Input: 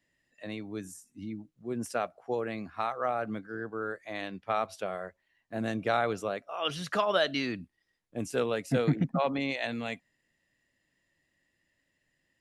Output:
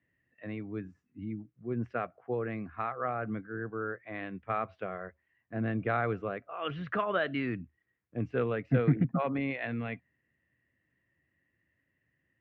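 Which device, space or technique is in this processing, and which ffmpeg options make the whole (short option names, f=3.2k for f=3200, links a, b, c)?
bass cabinet: -af "highpass=67,equalizer=f=76:t=q:w=4:g=9,equalizer=f=120:t=q:w=4:g=7,equalizer=f=600:t=q:w=4:g=-5,equalizer=f=870:t=q:w=4:g=-7,lowpass=f=2.3k:w=0.5412,lowpass=f=2.3k:w=1.3066"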